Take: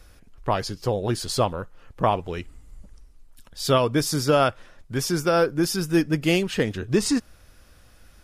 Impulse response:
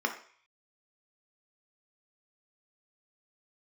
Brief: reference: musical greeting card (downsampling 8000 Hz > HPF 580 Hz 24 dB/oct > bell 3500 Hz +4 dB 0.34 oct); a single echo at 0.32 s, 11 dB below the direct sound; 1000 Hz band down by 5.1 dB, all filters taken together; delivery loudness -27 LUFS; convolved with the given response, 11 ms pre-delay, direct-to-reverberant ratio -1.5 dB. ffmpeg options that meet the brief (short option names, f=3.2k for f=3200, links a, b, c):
-filter_complex "[0:a]equalizer=f=1k:t=o:g=-7,aecho=1:1:320:0.282,asplit=2[a][b];[1:a]atrim=start_sample=2205,adelay=11[c];[b][c]afir=irnorm=-1:irlink=0,volume=-6.5dB[d];[a][d]amix=inputs=2:normalize=0,aresample=8000,aresample=44100,highpass=f=580:w=0.5412,highpass=f=580:w=1.3066,equalizer=f=3.5k:t=o:w=0.34:g=4,volume=0.5dB"